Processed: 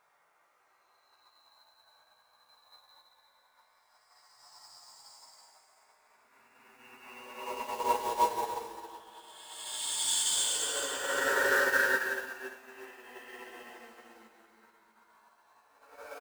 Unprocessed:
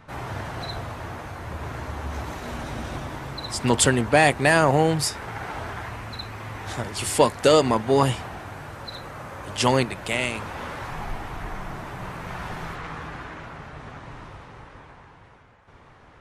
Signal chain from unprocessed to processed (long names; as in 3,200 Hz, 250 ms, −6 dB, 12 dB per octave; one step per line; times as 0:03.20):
high-pass filter 810 Hz 12 dB per octave
gate on every frequency bin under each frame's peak −15 dB strong
high-shelf EQ 3,400 Hz −11 dB
slap from a distant wall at 110 metres, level −13 dB
log-companded quantiser 4 bits
extreme stretch with random phases 20×, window 0.10 s, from 0:03.31
double-tracking delay 18 ms −5.5 dB
repeating echo 343 ms, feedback 48%, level −11.5 dB
expander for the loud parts 2.5 to 1, over −40 dBFS